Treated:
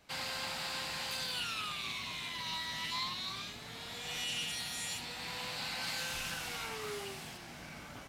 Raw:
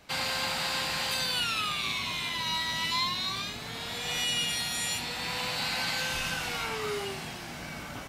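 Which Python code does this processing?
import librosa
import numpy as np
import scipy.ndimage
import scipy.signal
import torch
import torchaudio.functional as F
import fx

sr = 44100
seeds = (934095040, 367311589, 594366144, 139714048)

y = fx.high_shelf(x, sr, hz=6400.0, db=fx.steps((0.0, 3.0), (5.82, 8.5), (7.36, 2.0)))
y = fx.doppler_dist(y, sr, depth_ms=0.18)
y = y * librosa.db_to_amplitude(-8.5)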